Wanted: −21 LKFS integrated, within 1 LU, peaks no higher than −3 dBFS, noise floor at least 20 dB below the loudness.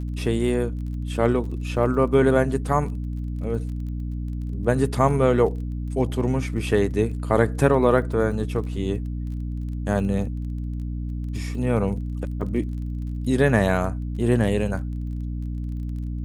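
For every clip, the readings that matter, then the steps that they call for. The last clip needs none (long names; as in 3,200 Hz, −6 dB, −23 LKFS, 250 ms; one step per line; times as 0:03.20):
crackle rate 28 per second; mains hum 60 Hz; hum harmonics up to 300 Hz; level of the hum −26 dBFS; integrated loudness −24.0 LKFS; sample peak −4.0 dBFS; target loudness −21.0 LKFS
→ click removal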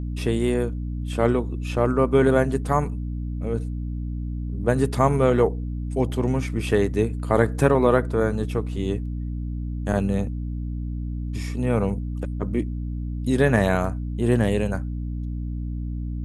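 crackle rate 0.062 per second; mains hum 60 Hz; hum harmonics up to 300 Hz; level of the hum −26 dBFS
→ mains-hum notches 60/120/180/240/300 Hz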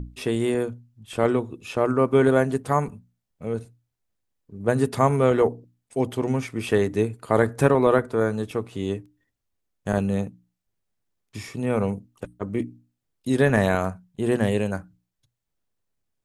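mains hum none found; integrated loudness −24.0 LKFS; sample peak −4.0 dBFS; target loudness −21.0 LKFS
→ level +3 dB
brickwall limiter −3 dBFS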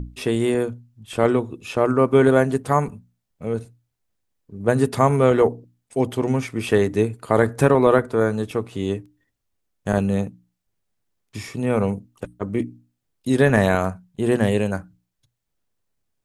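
integrated loudness −21.0 LKFS; sample peak −3.0 dBFS; background noise floor −77 dBFS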